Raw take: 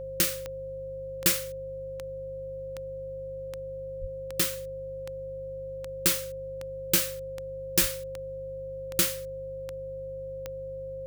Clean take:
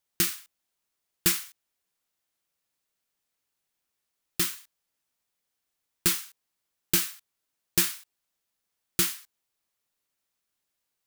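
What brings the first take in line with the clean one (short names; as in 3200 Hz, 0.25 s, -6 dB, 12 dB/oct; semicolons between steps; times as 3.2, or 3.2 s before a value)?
de-click; de-hum 50 Hz, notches 3; notch 530 Hz, Q 30; de-plosive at 4/7.8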